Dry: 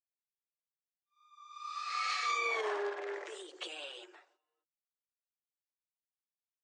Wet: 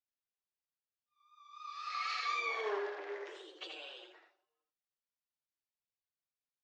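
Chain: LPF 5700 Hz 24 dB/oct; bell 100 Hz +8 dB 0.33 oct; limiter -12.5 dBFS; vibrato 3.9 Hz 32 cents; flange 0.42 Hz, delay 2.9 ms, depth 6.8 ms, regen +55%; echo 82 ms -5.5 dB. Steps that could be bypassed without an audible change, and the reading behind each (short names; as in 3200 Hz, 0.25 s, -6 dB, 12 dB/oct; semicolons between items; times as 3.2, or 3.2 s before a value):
bell 100 Hz: input band starts at 290 Hz; limiter -12.5 dBFS: input peak -22.5 dBFS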